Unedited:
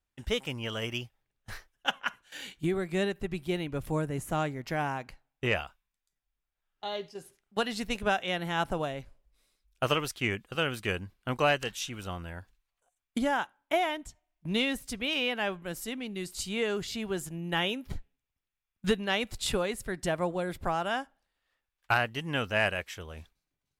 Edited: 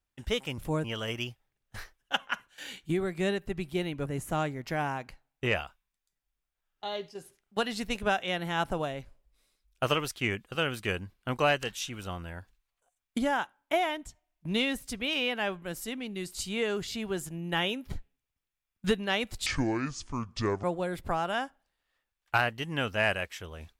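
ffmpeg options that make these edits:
-filter_complex "[0:a]asplit=6[s0][s1][s2][s3][s4][s5];[s0]atrim=end=0.582[s6];[s1]atrim=start=3.798:end=4.062[s7];[s2]atrim=start=0.578:end=3.802[s8];[s3]atrim=start=4.058:end=19.464[s9];[s4]atrim=start=19.46:end=20.2,asetpts=PTS-STARTPTS,asetrate=27783,aresample=44100[s10];[s5]atrim=start=20.196[s11];[s6][s7]acrossfade=d=0.004:c1=hsin:c2=hsin[s12];[s12][s8]acrossfade=d=0.004:c1=hsin:c2=hsin[s13];[s13][s9]acrossfade=d=0.004:c1=hsin:c2=hsin[s14];[s14][s10]acrossfade=d=0.004:c1=hsin:c2=hsin[s15];[s15][s11]acrossfade=d=0.004:c1=hsin:c2=hsin"

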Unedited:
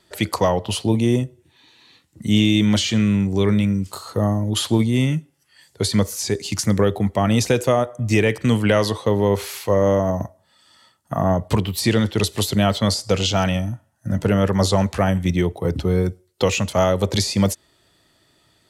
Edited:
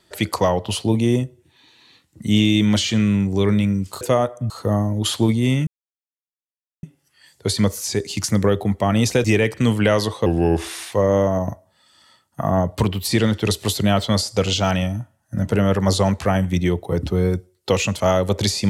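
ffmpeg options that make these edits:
-filter_complex "[0:a]asplit=7[s0][s1][s2][s3][s4][s5][s6];[s0]atrim=end=4.012[s7];[s1]atrim=start=7.588:end=8.082[s8];[s2]atrim=start=4.008:end=5.18,asetpts=PTS-STARTPTS,afade=t=out:st=1.168:d=0.004:c=hsin,apad=pad_dur=1.16[s9];[s3]atrim=start=5.18:end=7.592,asetpts=PTS-STARTPTS,afade=t=in:d=0.004:c=hsin[s10];[s4]atrim=start=8.078:end=9.104[s11];[s5]atrim=start=9.1:end=9.65,asetpts=PTS-STARTPTS,asetrate=36603,aresample=44100[s12];[s6]atrim=start=9.646[s13];[s7][s8]acrossfade=d=0.004:c1=hsin:c2=hsin[s14];[s9][s10]concat=n=2:v=0:a=1[s15];[s14][s15]acrossfade=d=0.004:c1=hsin:c2=hsin[s16];[s16][s11]acrossfade=d=0.004:c1=hsin:c2=hsin[s17];[s17][s12]acrossfade=d=0.004:c1=hsin:c2=hsin[s18];[s18][s13]acrossfade=d=0.004:c1=hsin:c2=hsin"

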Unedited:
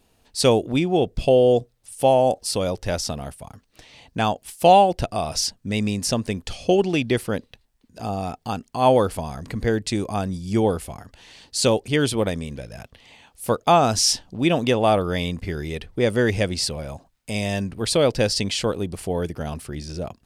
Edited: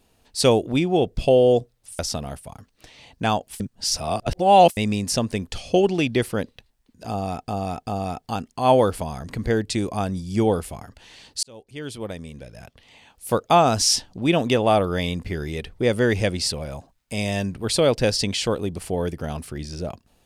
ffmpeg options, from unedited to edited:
-filter_complex "[0:a]asplit=7[s0][s1][s2][s3][s4][s5][s6];[s0]atrim=end=1.992[s7];[s1]atrim=start=2.938:end=4.552[s8];[s2]atrim=start=4.548:end=5.722,asetpts=PTS-STARTPTS,areverse[s9];[s3]atrim=start=5.718:end=8.432[s10];[s4]atrim=start=8.038:end=8.432[s11];[s5]atrim=start=8.038:end=11.6,asetpts=PTS-STARTPTS,afade=t=out:st=3.558:d=0.004:c=hsin[s12];[s6]atrim=start=11.6,asetpts=PTS-STARTPTS,afade=t=in:d=1.87[s13];[s7][s8]acrossfade=d=0.004:c1=hsin:c2=hsin[s14];[s14][s9]acrossfade=d=0.004:c1=hsin:c2=hsin[s15];[s15][s10]acrossfade=d=0.004:c1=hsin:c2=hsin[s16];[s16][s11]acrossfade=d=0.004:c1=hsin:c2=hsin[s17];[s12][s13]concat=n=2:v=0:a=1[s18];[s17][s18]acrossfade=d=0.004:c1=hsin:c2=hsin"

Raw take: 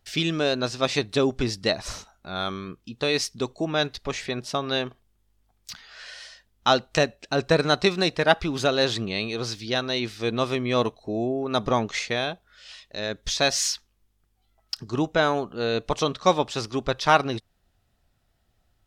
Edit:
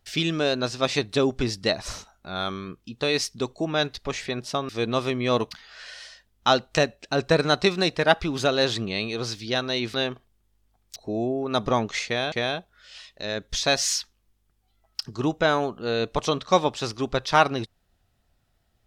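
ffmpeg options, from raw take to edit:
-filter_complex "[0:a]asplit=6[s0][s1][s2][s3][s4][s5];[s0]atrim=end=4.692[s6];[s1]atrim=start=10.138:end=10.962[s7];[s2]atrim=start=5.708:end=10.142[s8];[s3]atrim=start=4.688:end=5.712[s9];[s4]atrim=start=10.958:end=12.322[s10];[s5]atrim=start=12.058[s11];[s6][s7]acrossfade=d=0.004:c1=hsin:c2=hsin[s12];[s12][s8]acrossfade=d=0.004:c1=hsin:c2=hsin[s13];[s13][s9]acrossfade=d=0.004:c1=hsin:c2=hsin[s14];[s14][s10]acrossfade=d=0.004:c1=hsin:c2=hsin[s15];[s15][s11]acrossfade=d=0.004:c1=hsin:c2=hsin"

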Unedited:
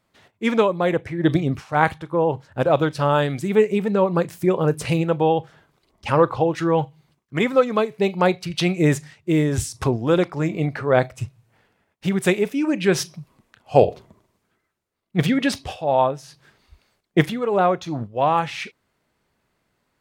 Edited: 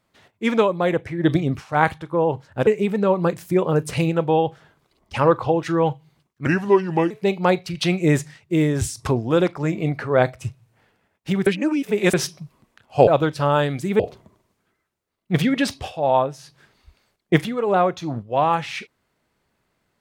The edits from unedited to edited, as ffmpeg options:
-filter_complex "[0:a]asplit=8[s0][s1][s2][s3][s4][s5][s6][s7];[s0]atrim=end=2.672[s8];[s1]atrim=start=3.588:end=7.384[s9];[s2]atrim=start=7.38:end=7.87,asetpts=PTS-STARTPTS,asetrate=33516,aresample=44100[s10];[s3]atrim=start=7.866:end=12.232[s11];[s4]atrim=start=12.228:end=12.902,asetpts=PTS-STARTPTS,areverse[s12];[s5]atrim=start=12.898:end=13.842[s13];[s6]atrim=start=2.668:end=3.592[s14];[s7]atrim=start=13.838[s15];[s8][s9]acrossfade=d=0.004:c1=hsin:c2=hsin[s16];[s16][s10]acrossfade=d=0.004:c1=hsin:c2=hsin[s17];[s17][s11]acrossfade=d=0.004:c1=hsin:c2=hsin[s18];[s18][s12]acrossfade=d=0.004:c1=hsin:c2=hsin[s19];[s19][s13]acrossfade=d=0.004:c1=hsin:c2=hsin[s20];[s20][s14]acrossfade=d=0.004:c1=hsin:c2=hsin[s21];[s21][s15]acrossfade=d=0.004:c1=hsin:c2=hsin"

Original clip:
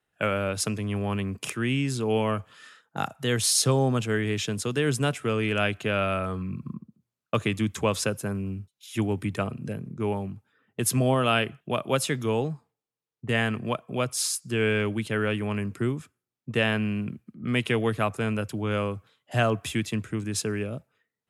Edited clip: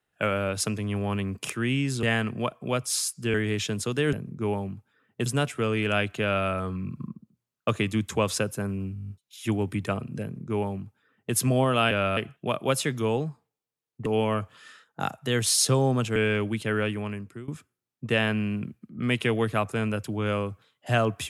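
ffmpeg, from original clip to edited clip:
-filter_complex "[0:a]asplit=18[s0][s1][s2][s3][s4][s5][s6][s7][s8][s9][s10][s11][s12][s13][s14][s15][s16][s17];[s0]atrim=end=2.032[s18];[s1]atrim=start=13.298:end=14.612[s19];[s2]atrim=start=4.128:end=4.922[s20];[s3]atrim=start=9.718:end=10.852[s21];[s4]atrim=start=4.918:end=8.622[s22];[s5]atrim=start=8.598:end=8.622[s23];[s6]atrim=start=8.598:end=8.622[s24];[s7]atrim=start=8.598:end=8.622[s25];[s8]atrim=start=8.598:end=8.622[s26];[s9]atrim=start=8.598:end=8.622[s27];[s10]atrim=start=8.598:end=8.622[s28];[s11]atrim=start=8.598:end=8.622[s29];[s12]atrim=start=8.598:end=11.412[s30];[s13]atrim=start=5.878:end=6.142[s31];[s14]atrim=start=11.408:end=13.302[s32];[s15]atrim=start=2.028:end=4.132[s33];[s16]atrim=start=14.608:end=15.93,asetpts=PTS-STARTPTS,afade=t=out:st=0.662:d=0.66:silence=0.105925[s34];[s17]atrim=start=15.93,asetpts=PTS-STARTPTS,afade=t=in:d=0.004:c=hsin:silence=0.105925[s35];[s18][s19]acrossfade=d=0.004:c1=hsin:c2=hsin[s36];[s36][s20]acrossfade=d=0.004:c1=hsin:c2=hsin[s37];[s37][s21]acrossfade=d=0.004:c1=hsin:c2=hsin[s38];[s38][s22]acrossfade=d=0.004:c1=hsin:c2=hsin[s39];[s39][s23]acrossfade=d=0.004:c1=hsin:c2=hsin[s40];[s40][s24]acrossfade=d=0.004:c1=hsin:c2=hsin[s41];[s41][s25]acrossfade=d=0.004:c1=hsin:c2=hsin[s42];[s42][s26]acrossfade=d=0.004:c1=hsin:c2=hsin[s43];[s43][s27]acrossfade=d=0.004:c1=hsin:c2=hsin[s44];[s44][s28]acrossfade=d=0.004:c1=hsin:c2=hsin[s45];[s45][s29]acrossfade=d=0.004:c1=hsin:c2=hsin[s46];[s46][s30]acrossfade=d=0.004:c1=hsin:c2=hsin[s47];[s47][s31]acrossfade=d=0.004:c1=hsin:c2=hsin[s48];[s48][s32]acrossfade=d=0.004:c1=hsin:c2=hsin[s49];[s49][s33]acrossfade=d=0.004:c1=hsin:c2=hsin[s50];[s34][s35]concat=n=2:v=0:a=1[s51];[s50][s51]acrossfade=d=0.004:c1=hsin:c2=hsin"

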